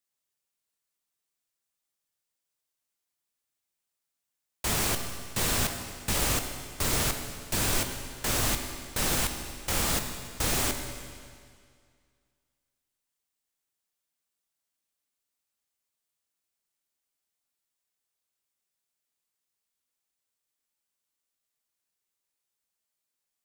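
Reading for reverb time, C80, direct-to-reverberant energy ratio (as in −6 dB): 2.1 s, 7.5 dB, 5.5 dB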